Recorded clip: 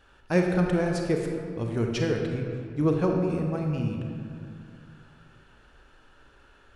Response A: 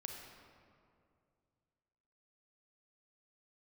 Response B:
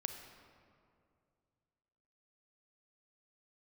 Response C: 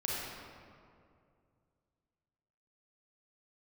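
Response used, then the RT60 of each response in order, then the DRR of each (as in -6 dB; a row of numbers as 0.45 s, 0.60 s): A; 2.4 s, 2.4 s, 2.3 s; 1.5 dB, 6.0 dB, -5.5 dB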